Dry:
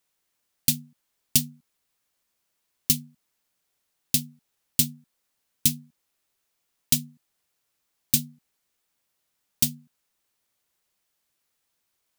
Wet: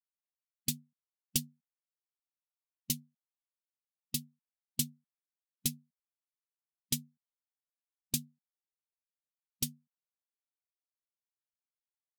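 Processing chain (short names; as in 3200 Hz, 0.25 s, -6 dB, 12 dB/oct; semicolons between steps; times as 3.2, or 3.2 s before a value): per-bin expansion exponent 1.5; low-pass opened by the level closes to 1100 Hz, open at -27 dBFS; gain -7.5 dB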